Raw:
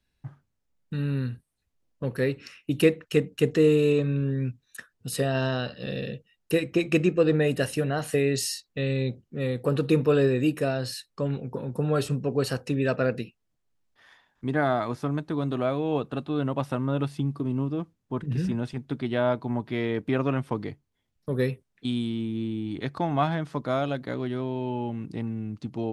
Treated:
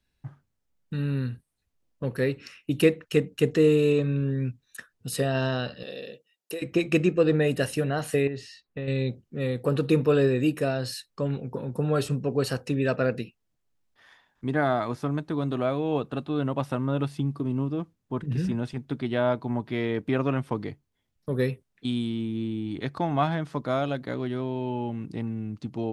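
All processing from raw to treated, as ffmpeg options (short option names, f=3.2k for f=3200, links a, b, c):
-filter_complex "[0:a]asettb=1/sr,asplit=3[a][b][c];[a]atrim=end=5.834[d];[b]atrim=start=5.83:end=6.62,asetpts=PTS-STARTPTS,afade=t=in:d=0.004:c=qsin,afade=t=out:st=0.786:d=0.004:c=qsin,highpass=440,acompressor=threshold=-28dB:ratio=5:attack=3.2:release=140:knee=1:detection=peak,equalizer=f=1.6k:w=0.7:g=-6.5[e];[c]atrim=start=6.616[f];[d][e]acrossfade=d=0.004:c1=hsin:c2=qsin[g];[g][f]acrossfade=d=0.004:c1=qsin:c2=hsin,asettb=1/sr,asplit=3[h][i][j];[h]atrim=end=8.274[k];[i]atrim=start=8.27:end=8.88,asetpts=PTS-STARTPTS,afade=t=in:d=0.004:c=qsin,afade=t=out:st=0.606:d=0.004:c=qsin,lowpass=2.2k,acompressor=threshold=-28dB:ratio=6:attack=3.2:release=140:knee=1:detection=peak[l];[j]atrim=start=8.876[m];[k][l]acrossfade=d=0.004:c1=hsin:c2=qsin[n];[n][m]acrossfade=d=0.004:c1=qsin:c2=hsin"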